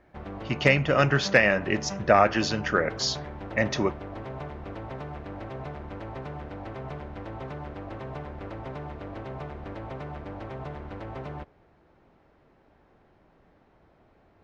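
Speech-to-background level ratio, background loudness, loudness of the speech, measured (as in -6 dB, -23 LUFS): 14.5 dB, -38.5 LUFS, -24.0 LUFS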